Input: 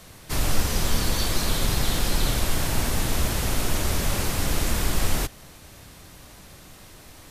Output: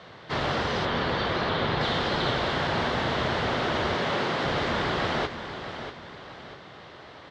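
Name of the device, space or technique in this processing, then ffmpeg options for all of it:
kitchen radio: -filter_complex "[0:a]asettb=1/sr,asplit=3[a][b][c];[a]atrim=end=3.944[d];[b]atrim=start=3.94:end=4.44,asetpts=PTS-STARTPTS,afade=t=in:d=0.004:c=qsin,afade=t=out:st=0.496:d=0.004:c=qsin,highpass=f=140:w=0.5412,highpass=f=140:w=1.3066[e];[c]atrim=start=4.436[f];[d][e]acrossfade=d=0.004:c1=hsin:c2=qsin[g];[g][f]acrossfade=d=0.004:c1=qsin:c2=hsin,highpass=180,equalizer=f=200:t=q:w=4:g=-6,equalizer=f=290:t=q:w=4:g=-7,equalizer=f=2.5k:t=q:w=4:g=-8,lowpass=f=3.5k:w=0.5412,lowpass=f=3.5k:w=1.3066,asettb=1/sr,asplit=3[h][i][j];[h]atrim=end=0.854[k];[i]atrim=start=0.85:end=1.81,asetpts=PTS-STARTPTS,afade=t=in:d=0.004:c=qsin,afade=t=out:st=0.956:d=0.004:c=qsin,acrossover=split=4000[l][m];[m]acompressor=threshold=-57dB:ratio=4:attack=1:release=60[n];[l][n]amix=inputs=2:normalize=0[o];[j]atrim=start=1.806[p];[k][o]acrossfade=d=0.004:c1=hsin:c2=qsin[q];[q][p]acrossfade=d=0.004:c1=qsin:c2=hsin,aecho=1:1:640|1280|1920|2560:0.316|0.117|0.0433|0.016,volume=5.5dB"

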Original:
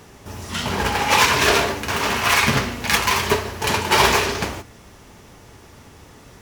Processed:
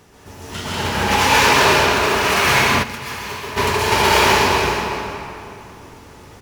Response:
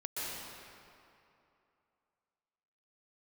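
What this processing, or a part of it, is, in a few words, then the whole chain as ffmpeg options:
cave: -filter_complex "[0:a]aecho=1:1:362:0.282[a];[1:a]atrim=start_sample=2205[b];[a][b]afir=irnorm=-1:irlink=0,asplit=3[c][d][e];[c]afade=t=out:st=2.82:d=0.02[f];[d]agate=range=-12dB:threshold=-6dB:ratio=16:detection=peak,afade=t=in:st=2.82:d=0.02,afade=t=out:st=3.56:d=0.02[g];[e]afade=t=in:st=3.56:d=0.02[h];[f][g][h]amix=inputs=3:normalize=0"

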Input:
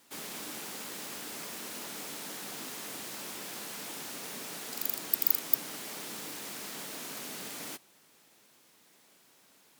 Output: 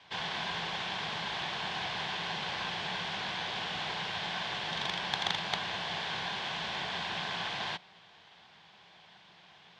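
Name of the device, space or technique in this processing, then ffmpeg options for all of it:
ring modulator pedal into a guitar cabinet: -af "aeval=exprs='val(0)*sgn(sin(2*PI*1300*n/s))':c=same,highpass=86,equalizer=f=170:t=q:w=4:g=10,equalizer=f=280:t=q:w=4:g=-9,equalizer=f=510:t=q:w=4:g=-4,equalizer=f=760:t=q:w=4:g=7,equalizer=f=3.3k:t=q:w=4:g=6,lowpass=f=4.1k:w=0.5412,lowpass=f=4.1k:w=1.3066,volume=7.5dB"

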